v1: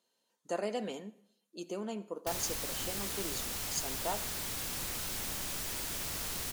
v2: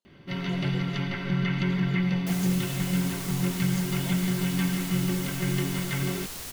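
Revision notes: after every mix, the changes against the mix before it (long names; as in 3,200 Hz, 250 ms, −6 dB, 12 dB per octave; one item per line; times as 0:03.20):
speech −10.5 dB
first sound: unmuted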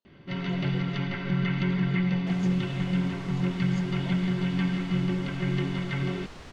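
second sound: add high-shelf EQ 3,100 Hz −11 dB
master: add high-frequency loss of the air 110 metres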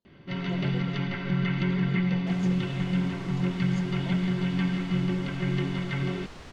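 speech: remove meter weighting curve A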